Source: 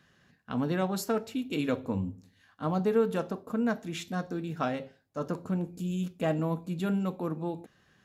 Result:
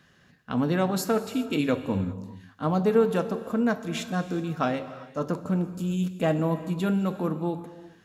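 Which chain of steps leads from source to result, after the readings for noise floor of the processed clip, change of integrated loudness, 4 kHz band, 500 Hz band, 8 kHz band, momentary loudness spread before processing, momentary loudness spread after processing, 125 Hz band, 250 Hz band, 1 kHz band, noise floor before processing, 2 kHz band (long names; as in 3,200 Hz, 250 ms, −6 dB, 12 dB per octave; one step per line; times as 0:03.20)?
−59 dBFS, +4.5 dB, +5.0 dB, +4.5 dB, +5.0 dB, 8 LU, 9 LU, +4.5 dB, +4.5 dB, +4.5 dB, −66 dBFS, +5.0 dB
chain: reverb whose tail is shaped and stops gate 430 ms flat, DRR 12 dB
level +4.5 dB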